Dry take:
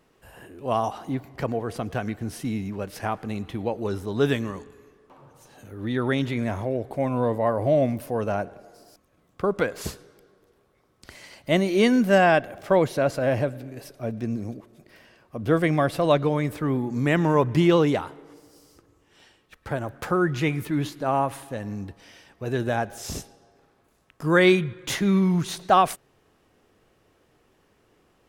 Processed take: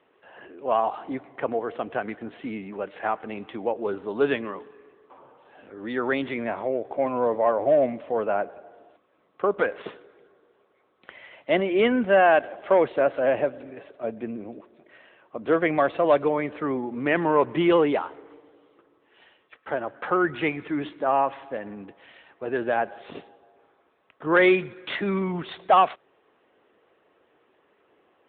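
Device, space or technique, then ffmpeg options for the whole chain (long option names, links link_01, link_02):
telephone: -af "highpass=360,lowpass=3500,asoftclip=type=tanh:threshold=-12dB,volume=3.5dB" -ar 8000 -c:a libopencore_amrnb -b:a 10200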